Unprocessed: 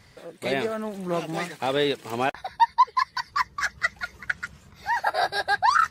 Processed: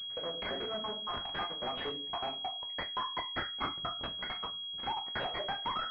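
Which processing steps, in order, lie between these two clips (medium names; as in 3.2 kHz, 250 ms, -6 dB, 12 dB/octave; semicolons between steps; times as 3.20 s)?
random holes in the spectrogram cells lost 69%; transient shaper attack +3 dB, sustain -6 dB; gate -59 dBFS, range -6 dB; waveshaping leveller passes 3; compression 12:1, threshold -31 dBFS, peak gain reduction 21.5 dB; simulated room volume 200 m³, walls furnished, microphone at 0.95 m; saturation -34 dBFS, distortion -8 dB; tilt EQ +3.5 dB/octave; class-D stage that switches slowly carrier 3.3 kHz; trim +3 dB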